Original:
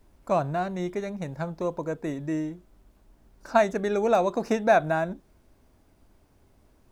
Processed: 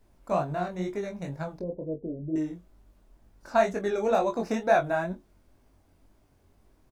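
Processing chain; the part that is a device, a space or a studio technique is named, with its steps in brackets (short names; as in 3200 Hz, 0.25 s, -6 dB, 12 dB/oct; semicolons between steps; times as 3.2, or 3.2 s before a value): 1.59–2.36 steep low-pass 590 Hz 36 dB/oct; double-tracked vocal (doubler 22 ms -10.5 dB; chorus 2.1 Hz, delay 19 ms, depth 4.9 ms)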